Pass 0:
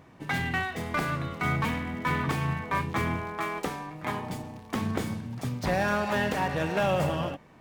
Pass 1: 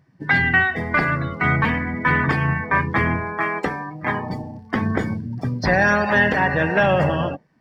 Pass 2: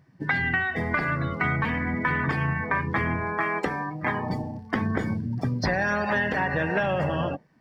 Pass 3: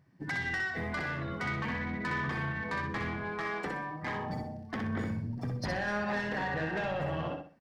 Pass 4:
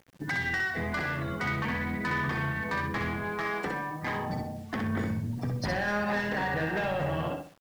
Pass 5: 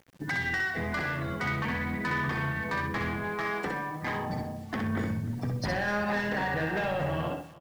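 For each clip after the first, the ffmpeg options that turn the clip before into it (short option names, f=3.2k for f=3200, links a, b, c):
-af "afftdn=nr=21:nf=-39,superequalizer=11b=2.24:14b=2.51,volume=8dB"
-af "acompressor=threshold=-22dB:ratio=6"
-filter_complex "[0:a]asoftclip=type=tanh:threshold=-22dB,asplit=2[a][b];[b]aecho=0:1:63|126|189|252:0.596|0.185|0.0572|0.0177[c];[a][c]amix=inputs=2:normalize=0,volume=-7dB"
-af "acrusher=bits=9:mix=0:aa=0.000001,volume=3.5dB"
-af "aecho=1:1:301:0.1"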